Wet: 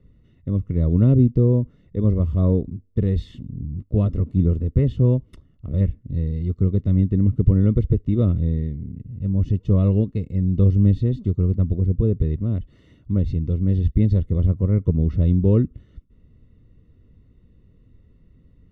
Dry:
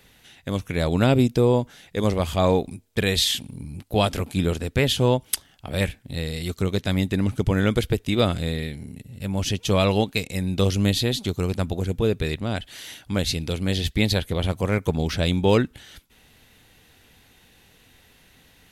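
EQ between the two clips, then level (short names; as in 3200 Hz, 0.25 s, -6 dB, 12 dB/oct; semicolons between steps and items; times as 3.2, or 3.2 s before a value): running mean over 55 samples; air absorption 51 m; low shelf 170 Hz +10.5 dB; 0.0 dB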